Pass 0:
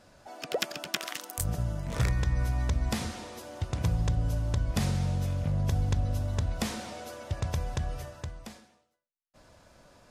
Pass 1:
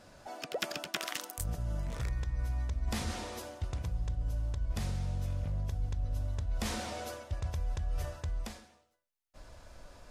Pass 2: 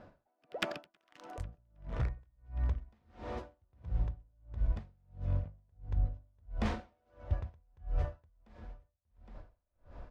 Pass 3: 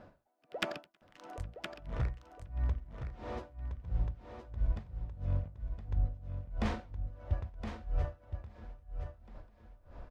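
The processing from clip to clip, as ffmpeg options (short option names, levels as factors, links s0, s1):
-af "asubboost=boost=5:cutoff=62,areverse,acompressor=threshold=0.0224:ratio=6,areverse,volume=1.19"
-af "aecho=1:1:814|1628|2442|3256|4070:0.133|0.0747|0.0418|0.0234|0.0131,adynamicsmooth=sensitivity=2:basefreq=1800,aeval=exprs='val(0)*pow(10,-40*(0.5-0.5*cos(2*PI*1.5*n/s))/20)':c=same,volume=1.68"
-af "aecho=1:1:1017:0.398"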